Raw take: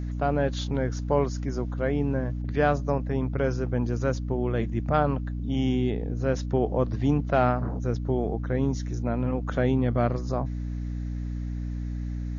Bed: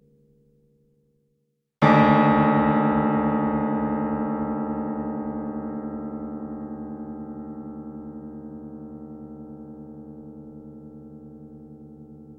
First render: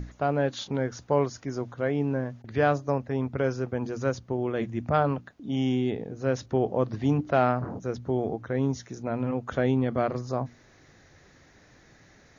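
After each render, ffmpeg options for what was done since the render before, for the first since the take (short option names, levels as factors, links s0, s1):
-af "bandreject=f=60:t=h:w=6,bandreject=f=120:t=h:w=6,bandreject=f=180:t=h:w=6,bandreject=f=240:t=h:w=6,bandreject=f=300:t=h:w=6"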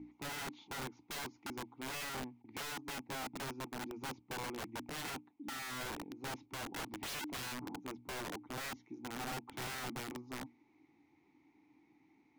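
-filter_complex "[0:a]asplit=3[s0][s1][s2];[s0]bandpass=f=300:t=q:w=8,volume=1[s3];[s1]bandpass=f=870:t=q:w=8,volume=0.501[s4];[s2]bandpass=f=2240:t=q:w=8,volume=0.355[s5];[s3][s4][s5]amix=inputs=3:normalize=0,aeval=exprs='(mod(75*val(0)+1,2)-1)/75':c=same"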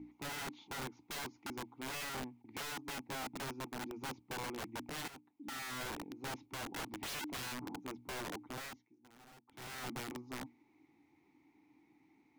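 -filter_complex "[0:a]asplit=4[s0][s1][s2][s3];[s0]atrim=end=5.08,asetpts=PTS-STARTPTS,afade=t=out:st=5.076:d=0.004:c=hsin:silence=0.188365[s4];[s1]atrim=start=5.08:end=8.92,asetpts=PTS-STARTPTS,afade=t=in:d=0.5:silence=0.188365,afade=t=out:st=3.38:d=0.46:silence=0.112202[s5];[s2]atrim=start=8.92:end=9.46,asetpts=PTS-STARTPTS,volume=0.112[s6];[s3]atrim=start=9.46,asetpts=PTS-STARTPTS,afade=t=in:d=0.46:silence=0.112202[s7];[s4][s5][s6][s7]concat=n=4:v=0:a=1"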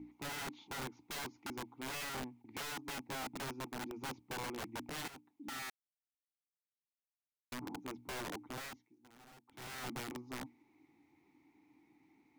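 -filter_complex "[0:a]asplit=3[s0][s1][s2];[s0]atrim=end=5.7,asetpts=PTS-STARTPTS,afade=t=out:st=5.696:d=0.004:c=hsin[s3];[s1]atrim=start=5.7:end=7.52,asetpts=PTS-STARTPTS,volume=0[s4];[s2]atrim=start=7.52,asetpts=PTS-STARTPTS,afade=t=in:d=0.004:c=hsin[s5];[s3][s4][s5]concat=n=3:v=0:a=1"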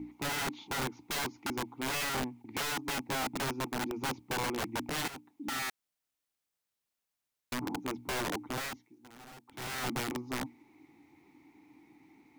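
-af "volume=2.66"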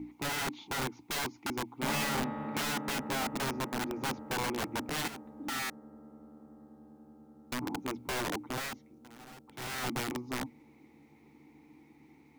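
-filter_complex "[1:a]volume=0.0944[s0];[0:a][s0]amix=inputs=2:normalize=0"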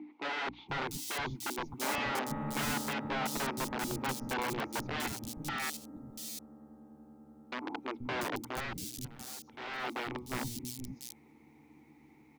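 -filter_complex "[0:a]acrossover=split=260|4100[s0][s1][s2];[s0]adelay=480[s3];[s2]adelay=690[s4];[s3][s1][s4]amix=inputs=3:normalize=0"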